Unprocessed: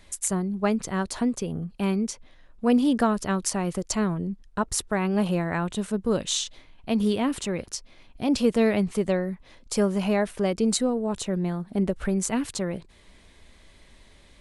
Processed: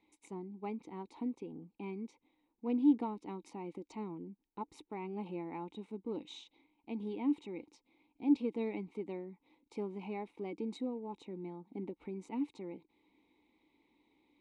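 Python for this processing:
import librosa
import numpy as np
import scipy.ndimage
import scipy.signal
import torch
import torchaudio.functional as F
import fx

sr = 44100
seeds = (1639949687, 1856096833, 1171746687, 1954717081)

p1 = np.clip(x, -10.0 ** (-22.5 / 20.0), 10.0 ** (-22.5 / 20.0))
p2 = x + F.gain(torch.from_numpy(p1), -6.0).numpy()
p3 = fx.cheby_harmonics(p2, sr, harmonics=(2, 3), levels_db=(-22, -16), full_scale_db=-6.0)
p4 = fx.vowel_filter(p3, sr, vowel='u')
p5 = fx.small_body(p4, sr, hz=(510.0, 3800.0), ring_ms=25, db=14)
y = F.gain(torch.from_numpy(p5), -2.0).numpy()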